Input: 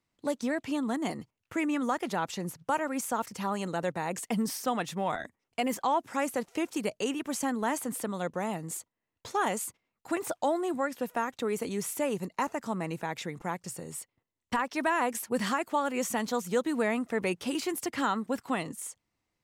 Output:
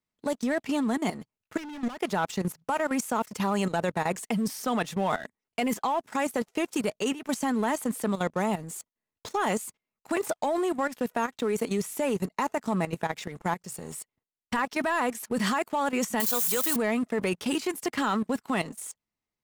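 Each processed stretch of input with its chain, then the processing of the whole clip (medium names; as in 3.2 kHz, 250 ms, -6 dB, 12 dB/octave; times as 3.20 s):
1.57–1.98 s: low-pass 5.2 kHz + hard clipper -33.5 dBFS
16.20–16.76 s: zero-crossing glitches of -30 dBFS + RIAA curve recording
whole clip: comb 4.7 ms, depth 30%; waveshaping leveller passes 2; level held to a coarse grid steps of 13 dB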